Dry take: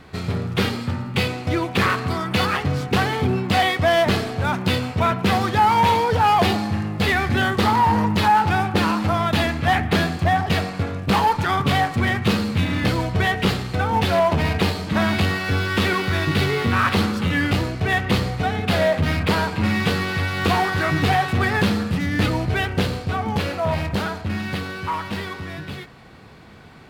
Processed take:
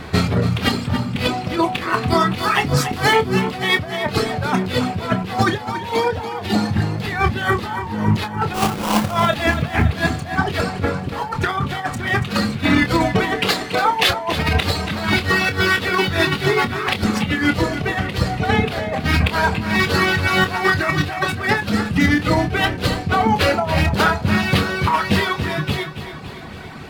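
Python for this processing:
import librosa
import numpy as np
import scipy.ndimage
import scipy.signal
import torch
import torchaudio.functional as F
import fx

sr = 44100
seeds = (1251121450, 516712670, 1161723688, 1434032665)

p1 = fx.dereverb_blind(x, sr, rt60_s=1.3)
p2 = fx.high_shelf(p1, sr, hz=4700.0, db=9.0, at=(2.38, 3.13))
p3 = fx.highpass(p2, sr, hz=fx.line((13.12, 200.0), (14.09, 710.0)), slope=12, at=(13.12, 14.09), fade=0.02)
p4 = fx.over_compress(p3, sr, threshold_db=-26.0, ratio=-0.5)
p5 = fx.sample_hold(p4, sr, seeds[0], rate_hz=1900.0, jitter_pct=20, at=(8.53, 9.1), fade=0.02)
p6 = fx.doubler(p5, sr, ms=27.0, db=-9.5)
p7 = p6 + fx.echo_feedback(p6, sr, ms=283, feedback_pct=59, wet_db=-11.0, dry=0)
y = p7 * librosa.db_to_amplitude(7.5)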